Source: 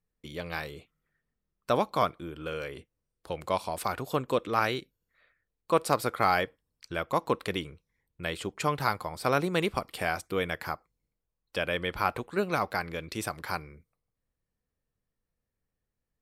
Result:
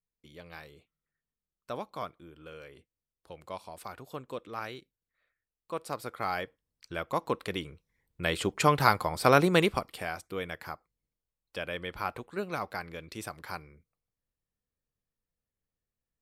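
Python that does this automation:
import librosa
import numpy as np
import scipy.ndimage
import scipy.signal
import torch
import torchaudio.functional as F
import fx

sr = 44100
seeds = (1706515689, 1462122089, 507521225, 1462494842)

y = fx.gain(x, sr, db=fx.line((5.75, -11.5), (6.97, -3.0), (7.48, -3.0), (8.42, 5.0), (9.55, 5.0), (10.06, -6.0)))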